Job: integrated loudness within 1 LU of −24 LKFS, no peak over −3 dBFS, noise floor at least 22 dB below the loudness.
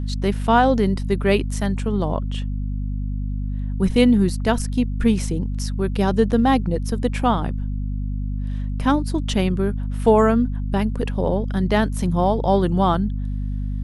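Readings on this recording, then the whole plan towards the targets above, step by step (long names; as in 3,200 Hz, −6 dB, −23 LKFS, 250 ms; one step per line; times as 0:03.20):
mains hum 50 Hz; hum harmonics up to 250 Hz; level of the hum −22 dBFS; integrated loudness −21.5 LKFS; sample peak −2.5 dBFS; target loudness −24.0 LKFS
→ hum removal 50 Hz, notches 5
level −2.5 dB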